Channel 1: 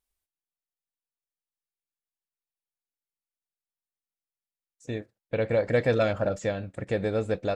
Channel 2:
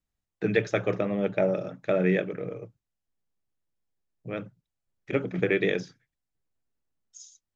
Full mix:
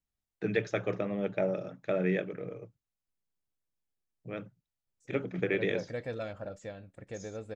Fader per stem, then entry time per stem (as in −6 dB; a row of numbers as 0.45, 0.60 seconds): −14.0, −5.5 decibels; 0.20, 0.00 seconds